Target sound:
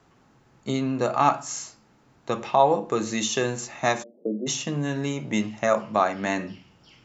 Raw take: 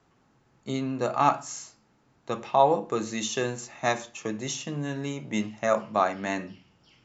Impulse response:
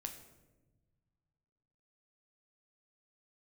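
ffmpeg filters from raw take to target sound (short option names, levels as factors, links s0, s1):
-filter_complex "[0:a]asplit=3[s0][s1][s2];[s0]afade=t=out:st=4.02:d=0.02[s3];[s1]asuperpass=centerf=340:order=12:qfactor=0.8,afade=t=in:st=4.02:d=0.02,afade=t=out:st=4.46:d=0.02[s4];[s2]afade=t=in:st=4.46:d=0.02[s5];[s3][s4][s5]amix=inputs=3:normalize=0,asplit=2[s6][s7];[s7]acompressor=threshold=0.0316:ratio=6,volume=0.944[s8];[s6][s8]amix=inputs=2:normalize=0"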